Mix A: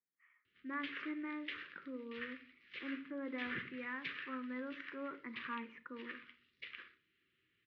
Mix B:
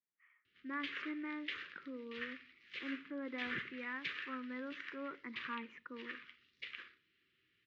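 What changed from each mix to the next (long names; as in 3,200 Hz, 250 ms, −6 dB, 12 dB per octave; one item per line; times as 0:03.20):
speech: send −8.0 dB
master: remove high-frequency loss of the air 160 metres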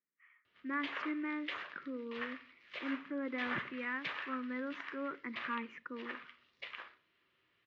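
speech +4.5 dB
background: remove Butterworth band-reject 780 Hz, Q 0.65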